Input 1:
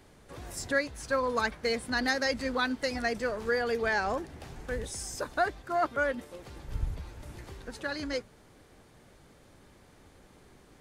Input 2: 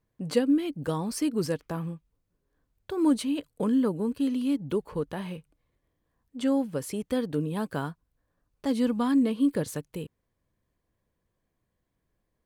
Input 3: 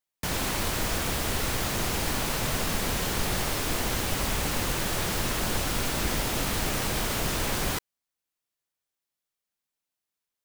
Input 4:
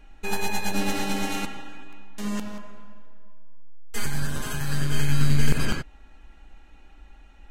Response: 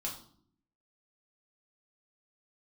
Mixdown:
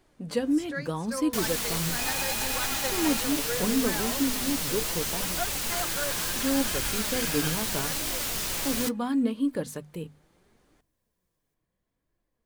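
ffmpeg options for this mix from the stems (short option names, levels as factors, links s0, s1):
-filter_complex "[0:a]volume=0.708[s0];[1:a]volume=1.33[s1];[2:a]highshelf=f=2400:g=11,adelay=1100,volume=0.631[s2];[3:a]highpass=f=720:w=0.5412,highpass=f=720:w=1.3066,adelay=1750,volume=1.12[s3];[s0][s1][s2][s3]amix=inputs=4:normalize=0,bandreject=f=50:t=h:w=6,bandreject=f=100:t=h:w=6,bandreject=f=150:t=h:w=6,bandreject=f=200:t=h:w=6,bandreject=f=250:t=h:w=6,flanger=delay=2.7:depth=4.5:regen=63:speed=0.74:shape=triangular"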